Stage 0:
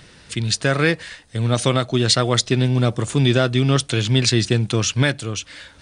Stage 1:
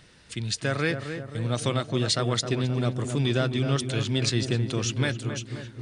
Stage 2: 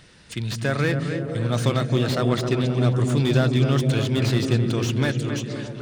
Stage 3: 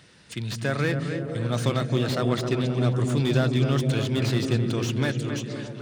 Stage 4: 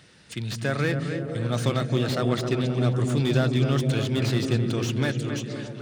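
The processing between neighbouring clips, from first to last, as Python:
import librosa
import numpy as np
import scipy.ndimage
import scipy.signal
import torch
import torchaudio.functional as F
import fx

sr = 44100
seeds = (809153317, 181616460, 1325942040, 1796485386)

y1 = fx.echo_filtered(x, sr, ms=263, feedback_pct=64, hz=1300.0, wet_db=-7.0)
y1 = y1 * 10.0 ** (-8.5 / 20.0)
y2 = fx.echo_stepped(y1, sr, ms=154, hz=160.0, octaves=0.7, feedback_pct=70, wet_db=-1)
y2 = fx.slew_limit(y2, sr, full_power_hz=97.0)
y2 = y2 * 10.0 ** (3.5 / 20.0)
y3 = scipy.signal.sosfilt(scipy.signal.butter(2, 82.0, 'highpass', fs=sr, output='sos'), y2)
y3 = y3 * 10.0 ** (-2.5 / 20.0)
y4 = fx.notch(y3, sr, hz=1000.0, q=23.0)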